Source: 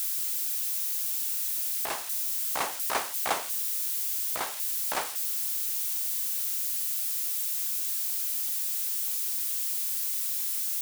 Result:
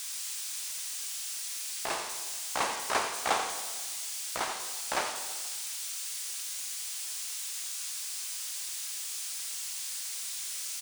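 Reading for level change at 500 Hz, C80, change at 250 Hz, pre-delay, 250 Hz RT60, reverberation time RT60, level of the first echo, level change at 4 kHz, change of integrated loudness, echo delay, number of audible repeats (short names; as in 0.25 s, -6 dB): +1.0 dB, 6.5 dB, +1.5 dB, 5 ms, 1.5 s, 1.4 s, -10.0 dB, +1.5 dB, -6.0 dB, 88 ms, 1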